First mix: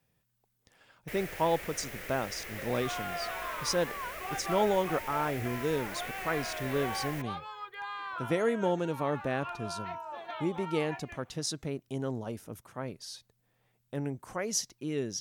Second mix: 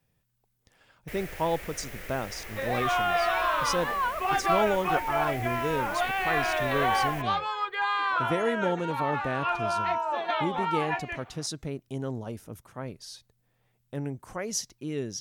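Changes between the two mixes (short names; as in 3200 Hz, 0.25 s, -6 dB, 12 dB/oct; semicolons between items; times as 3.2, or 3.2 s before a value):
second sound +12.0 dB; master: add low shelf 76 Hz +9.5 dB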